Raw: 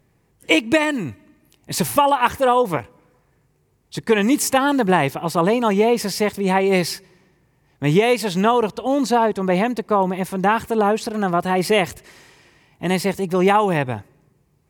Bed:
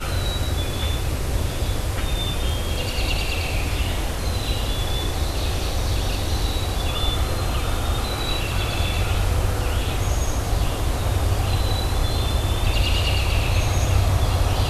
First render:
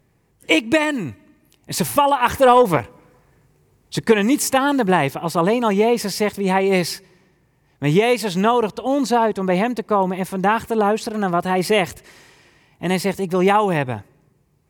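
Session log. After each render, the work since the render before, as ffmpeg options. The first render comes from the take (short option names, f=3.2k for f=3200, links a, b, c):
-filter_complex "[0:a]asettb=1/sr,asplit=3[a][b][c];[a]atrim=end=2.284[d];[b]atrim=start=2.28:end=4.12,asetpts=PTS-STARTPTS,afade=t=in:d=0.004:c=qsin,afade=t=out:st=1.836:d=0.004:c=qsin,acontrast=28[e];[c]atrim=start=4.116[f];[d][e]acrossfade=d=0.004:c1=hsin:c2=qsin[g];[g][f]acrossfade=d=0.004:c1=qsin:c2=hsin"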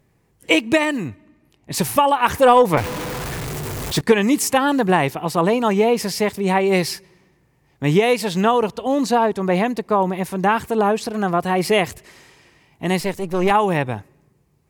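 -filter_complex "[0:a]asplit=3[a][b][c];[a]afade=t=out:st=1.07:d=0.02[d];[b]lowpass=f=3.1k:p=1,afade=t=in:st=1.07:d=0.02,afade=t=out:st=1.73:d=0.02[e];[c]afade=t=in:st=1.73:d=0.02[f];[d][e][f]amix=inputs=3:normalize=0,asettb=1/sr,asplit=3[g][h][i];[g]atrim=end=2.774[j];[h]atrim=start=2.77:end=4.01,asetpts=PTS-STARTPTS,afade=t=in:d=0.004:c=qsin,afade=t=out:st=1.236:d=0.004:c=qsin,aeval=exprs='val(0)+0.5*0.0841*sgn(val(0))':c=same[k];[i]atrim=start=4.006[l];[j][k]acrossfade=d=0.004:c1=hsin:c2=qsin[m];[m][l]acrossfade=d=0.004:c1=qsin:c2=hsin,asettb=1/sr,asplit=3[n][o][p];[n]atrim=end=13.004[q];[o]atrim=start=13:end=13.51,asetpts=PTS-STARTPTS,afade=t=in:d=0.004:c=qsin,afade=t=out:st=0.506:d=0.004:c=qsin,aeval=exprs='if(lt(val(0),0),0.447*val(0),val(0))':c=same[r];[p]atrim=start=13.506[s];[q][r]acrossfade=d=0.004:c1=hsin:c2=qsin[t];[t][s]acrossfade=d=0.004:c1=qsin:c2=hsin"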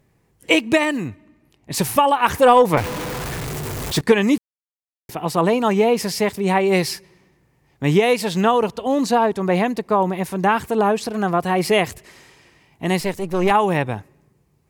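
-filter_complex "[0:a]asplit=3[a][b][c];[a]atrim=end=4.38,asetpts=PTS-STARTPTS,afade=t=out:st=4.376:d=0.004:c=hsin[d];[b]atrim=start=4.38:end=5.09,asetpts=PTS-STARTPTS,volume=0[e];[c]atrim=start=5.09,asetpts=PTS-STARTPTS,afade=t=in:d=0.004:c=hsin[f];[d][e][f]concat=n=3:v=0:a=1"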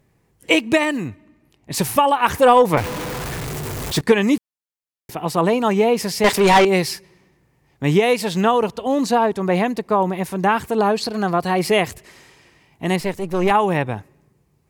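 -filter_complex "[0:a]asettb=1/sr,asplit=3[a][b][c];[a]atrim=end=6.244[d];[b]atrim=start=6.24:end=6.65,asetpts=PTS-STARTPTS,afade=t=in:d=0.004:c=qsin,afade=t=out:st=0.406:d=0.004:c=qsin,asplit=2[e][f];[f]highpass=f=720:p=1,volume=24dB,asoftclip=type=tanh:threshold=-5dB[g];[e][g]amix=inputs=2:normalize=0,lowpass=f=6.9k:p=1,volume=-6dB[h];[c]atrim=start=6.646[i];[d][h]acrossfade=d=0.004:c1=hsin:c2=qsin[j];[j][i]acrossfade=d=0.004:c1=qsin:c2=hsin,asettb=1/sr,asplit=3[k][l][m];[k]atrim=end=10.784[n];[l]atrim=start=10.78:end=11.59,asetpts=PTS-STARTPTS,afade=t=in:d=0.004:c=qsin,afade=t=out:st=0.806:d=0.004:c=qsin,equalizer=f=4.4k:t=o:w=0.21:g=13[o];[m]atrim=start=11.586[p];[n][o]acrossfade=d=0.004:c1=hsin:c2=qsin[q];[q][p]acrossfade=d=0.004:c1=qsin:c2=hsin,asettb=1/sr,asplit=3[r][s][t];[r]atrim=end=12.964[u];[s]atrim=start=12.96:end=13.97,asetpts=PTS-STARTPTS,afade=t=in:d=0.004:c=qsin,afade=t=out:st=1.006:d=0.004:c=qsin,adynamicequalizer=threshold=0.0178:dfrequency=3400:dqfactor=0.7:tfrequency=3400:tqfactor=0.7:attack=5:release=100:ratio=0.375:range=2:mode=cutabove:tftype=highshelf[v];[t]atrim=start=13.966[w];[u][v]acrossfade=d=0.004:c1=hsin:c2=qsin[x];[x][w]acrossfade=d=0.004:c1=qsin:c2=hsin"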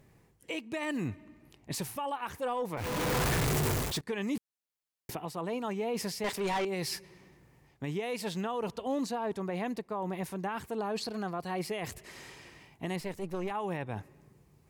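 -af "areverse,acompressor=threshold=-27dB:ratio=6,areverse,alimiter=level_in=1.5dB:limit=-24dB:level=0:latency=1:release=378,volume=-1.5dB"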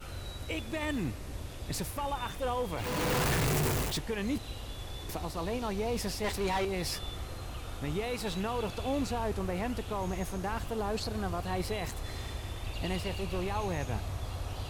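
-filter_complex "[1:a]volume=-17.5dB[a];[0:a][a]amix=inputs=2:normalize=0"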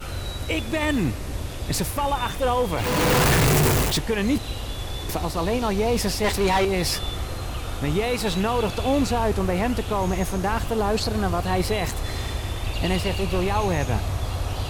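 -af "volume=10.5dB"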